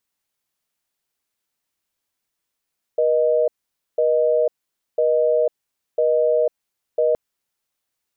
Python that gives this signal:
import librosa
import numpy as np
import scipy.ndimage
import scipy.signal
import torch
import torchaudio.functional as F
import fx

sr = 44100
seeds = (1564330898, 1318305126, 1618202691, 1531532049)

y = fx.call_progress(sr, length_s=4.17, kind='busy tone', level_db=-17.5)